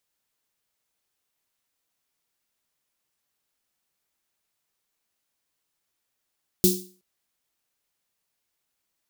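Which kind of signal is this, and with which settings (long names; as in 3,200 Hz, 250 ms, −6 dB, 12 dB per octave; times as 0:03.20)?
synth snare length 0.37 s, tones 190 Hz, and 360 Hz, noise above 4,000 Hz, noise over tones −1 dB, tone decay 0.39 s, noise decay 0.38 s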